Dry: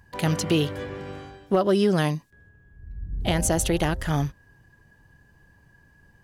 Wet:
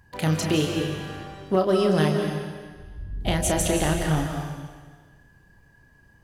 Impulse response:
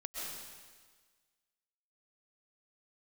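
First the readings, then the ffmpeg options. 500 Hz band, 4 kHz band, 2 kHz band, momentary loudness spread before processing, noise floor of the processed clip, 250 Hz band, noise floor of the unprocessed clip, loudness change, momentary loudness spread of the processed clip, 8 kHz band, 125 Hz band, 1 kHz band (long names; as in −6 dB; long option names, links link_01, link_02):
+1.0 dB, +1.0 dB, +1.0 dB, 17 LU, −57 dBFS, +0.5 dB, −58 dBFS, +0.5 dB, 18 LU, +1.0 dB, +1.0 dB, +1.0 dB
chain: -filter_complex "[0:a]asplit=2[link_01][link_02];[1:a]atrim=start_sample=2205,adelay=32[link_03];[link_02][link_03]afir=irnorm=-1:irlink=0,volume=-2dB[link_04];[link_01][link_04]amix=inputs=2:normalize=0,volume=-1.5dB"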